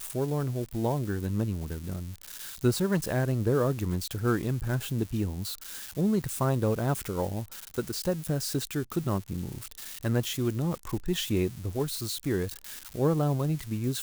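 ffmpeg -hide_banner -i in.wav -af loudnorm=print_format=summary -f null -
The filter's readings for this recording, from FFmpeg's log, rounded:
Input Integrated:    -30.1 LUFS
Input True Peak:     -12.1 dBTP
Input LRA:             1.8 LU
Input Threshold:     -40.2 LUFS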